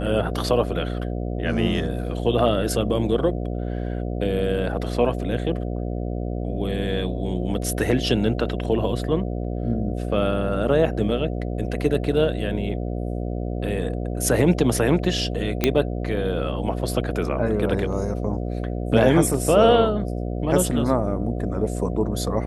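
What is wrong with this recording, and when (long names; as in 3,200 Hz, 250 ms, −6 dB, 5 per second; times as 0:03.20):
mains buzz 60 Hz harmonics 12 −27 dBFS
0:15.64: click −4 dBFS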